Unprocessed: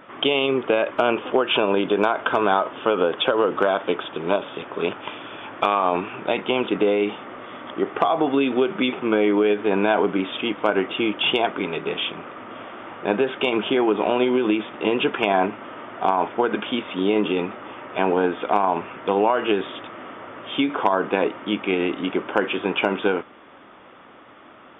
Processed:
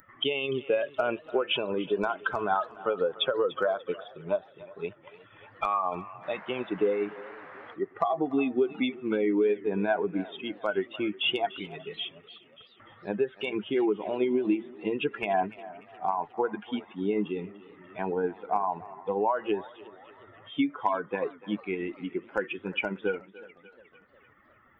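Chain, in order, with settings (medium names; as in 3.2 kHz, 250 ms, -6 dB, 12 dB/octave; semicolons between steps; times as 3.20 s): expander on every frequency bin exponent 2; bass shelf 77 Hz +7 dB; 12.28–12.80 s: level held to a coarse grid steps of 20 dB; on a send: thinning echo 293 ms, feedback 31%, high-pass 550 Hz, level -17 dB; on the sum: upward compressor, threshold -40 dBFS; 6.22–7.73 s: band noise 520–1900 Hz -45 dBFS; modulated delay 362 ms, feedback 52%, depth 151 cents, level -22 dB; trim -2.5 dB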